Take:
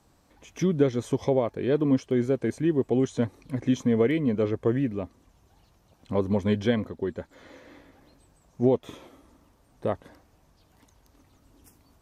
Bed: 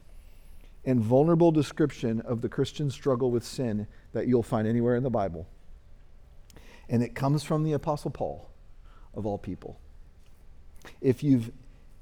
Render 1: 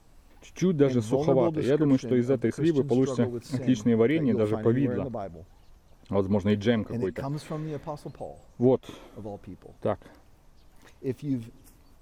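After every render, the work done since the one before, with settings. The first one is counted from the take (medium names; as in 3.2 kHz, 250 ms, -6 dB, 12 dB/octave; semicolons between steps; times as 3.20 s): add bed -7 dB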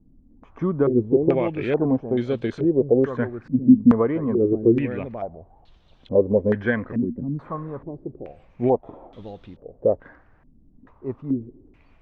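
step-sequenced low-pass 2.3 Hz 250–3500 Hz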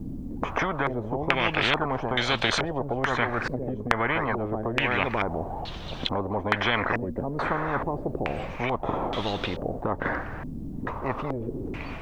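in parallel at +2 dB: compression, threshold -27 dBFS, peak gain reduction 18 dB; on the sum: spectrum-flattening compressor 10:1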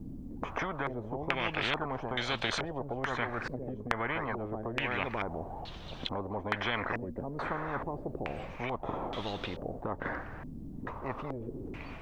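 trim -8 dB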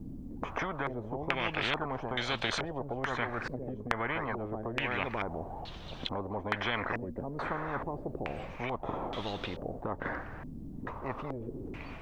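no audible change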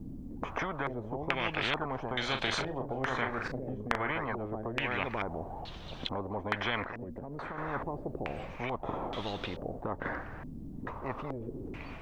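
2.19–4.12 s: doubling 38 ms -7 dB; 6.83–7.58 s: compression, threshold -36 dBFS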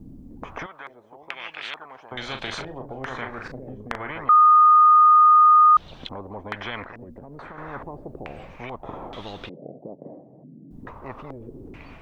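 0.66–2.12 s: high-pass 1.5 kHz 6 dB/octave; 4.29–5.77 s: bleep 1.23 kHz -10 dBFS; 9.49–10.71 s: elliptic band-pass 140–650 Hz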